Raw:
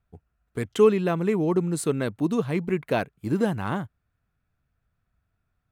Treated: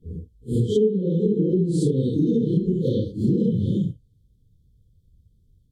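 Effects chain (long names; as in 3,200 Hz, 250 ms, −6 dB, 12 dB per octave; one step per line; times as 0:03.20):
random phases in long frames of 200 ms
treble cut that deepens with the level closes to 1,900 Hz, closed at −17.5 dBFS
low-shelf EQ 230 Hz +11 dB
downward compressor 6 to 1, threshold −25 dBFS, peak gain reduction 17 dB
linear-phase brick-wall band-stop 550–3,000 Hz
level +7.5 dB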